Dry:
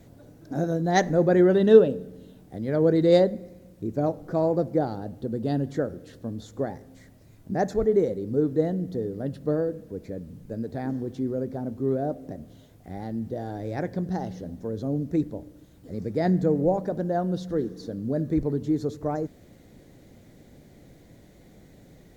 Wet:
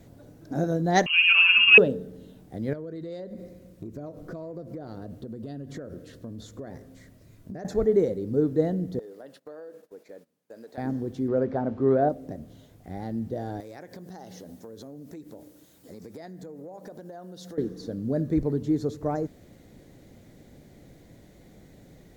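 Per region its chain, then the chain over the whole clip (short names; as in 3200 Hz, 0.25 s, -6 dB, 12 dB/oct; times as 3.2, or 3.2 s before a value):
1.06–1.78 hard clip -6.5 dBFS + flutter echo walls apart 11.2 m, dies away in 0.61 s + inverted band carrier 3000 Hz
2.73–7.65 compressor 16:1, threshold -33 dBFS + notch 820 Hz, Q 5.2
8.99–10.78 HPF 630 Hz + gate -55 dBFS, range -17 dB + compressor, threshold -39 dBFS
11.28–12.09 LPF 4200 Hz + bell 1200 Hz +10.5 dB 2.8 oct
13.6–17.58 HPF 380 Hz 6 dB/oct + high shelf 5200 Hz +10 dB + compressor 12:1, threshold -38 dBFS
whole clip: dry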